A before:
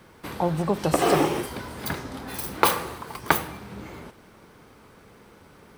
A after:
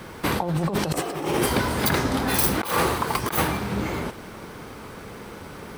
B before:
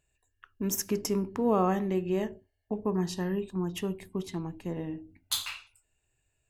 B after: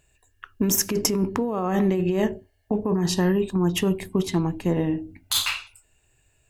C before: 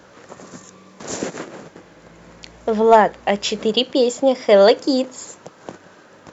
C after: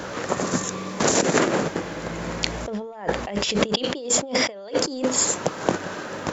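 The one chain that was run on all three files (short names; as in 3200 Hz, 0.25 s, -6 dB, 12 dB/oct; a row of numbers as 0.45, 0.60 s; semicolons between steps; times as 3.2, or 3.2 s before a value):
negative-ratio compressor -31 dBFS, ratio -1; match loudness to -24 LUFS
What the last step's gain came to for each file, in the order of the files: +7.5, +9.5, +4.5 dB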